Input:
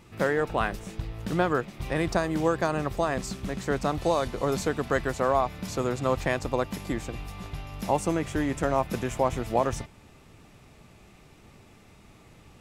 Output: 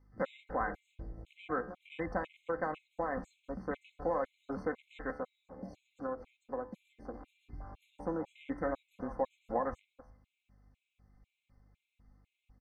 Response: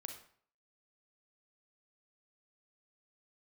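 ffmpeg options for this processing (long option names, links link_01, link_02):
-filter_complex "[0:a]asettb=1/sr,asplit=3[link_01][link_02][link_03];[link_01]atrim=end=5.104[link_04];[link_02]atrim=start=5.1:end=7.3,asetpts=PTS-STARTPTS,afade=type=in:duration=0.004:curve=qsin,afade=type=out:start_time=2.196:duration=0.004:curve=qsin,acrossover=split=180|610[link_05][link_06][link_07];[link_05]acompressor=threshold=-47dB:ratio=4[link_08];[link_06]acompressor=threshold=-33dB:ratio=4[link_09];[link_07]acompressor=threshold=-38dB:ratio=4[link_10];[link_08][link_09][link_10]amix=inputs=3:normalize=0[link_11];[link_03]atrim=start=7.296[link_12];[link_04][link_11]acrossfade=duration=0.004:curve1=hsin:curve2=qsin[link_13];[link_13][link_12]acrossfade=duration=0.004:curve1=qsin:curve2=hsin,lowpass=frequency=1600:poles=1,acompressor=threshold=-33dB:ratio=1.5,lowshelf=frequency=450:gain=-7.5,aecho=1:1:3.9:0.64,aecho=1:1:308:0.188,afwtdn=0.00891,aeval=exprs='val(0)+0.000794*(sin(2*PI*50*n/s)+sin(2*PI*2*50*n/s)/2+sin(2*PI*3*50*n/s)/3+sin(2*PI*4*50*n/s)/4+sin(2*PI*5*50*n/s)/5)':channel_layout=same,bandreject=frequency=72.57:width_type=h:width=4,bandreject=frequency=145.14:width_type=h:width=4,bandreject=frequency=217.71:width_type=h:width=4,bandreject=frequency=290.28:width_type=h:width=4,bandreject=frequency=362.85:width_type=h:width=4,bandreject=frequency=435.42:width_type=h:width=4,bandreject=frequency=507.99:width_type=h:width=4,bandreject=frequency=580.56:width_type=h:width=4,bandreject=frequency=653.13:width_type=h:width=4,bandreject=frequency=725.7:width_type=h:width=4,bandreject=frequency=798.27:width_type=h:width=4,bandreject=frequency=870.84:width_type=h:width=4,bandreject=frequency=943.41:width_type=h:width=4,bandreject=frequency=1015.98:width_type=h:width=4,bandreject=frequency=1088.55:width_type=h:width=4,bandreject=frequency=1161.12:width_type=h:width=4,bandreject=frequency=1233.69:width_type=h:width=4,bandreject=frequency=1306.26:width_type=h:width=4,bandreject=frequency=1378.83:width_type=h:width=4,bandreject=frequency=1451.4:width_type=h:width=4,bandreject=frequency=1523.97:width_type=h:width=4,bandreject=frequency=1596.54:width_type=h:width=4,bandreject=frequency=1669.11:width_type=h:width=4,bandreject=frequency=1741.68:width_type=h:width=4,bandreject=frequency=1814.25:width_type=h:width=4,bandreject=frequency=1886.82:width_type=h:width=4,bandreject=frequency=1959.39:width_type=h:width=4,bandreject=frequency=2031.96:width_type=h:width=4,bandreject=frequency=2104.53:width_type=h:width=4,bandreject=frequency=2177.1:width_type=h:width=4,bandreject=frequency=2249.67:width_type=h:width=4,bandreject=frequency=2322.24:width_type=h:width=4,afftfilt=real='re*gt(sin(2*PI*2*pts/sr)*(1-2*mod(floor(b*sr/1024/2100),2)),0)':imag='im*gt(sin(2*PI*2*pts/sr)*(1-2*mod(floor(b*sr/1024/2100),2)),0)':win_size=1024:overlap=0.75,volume=-1dB"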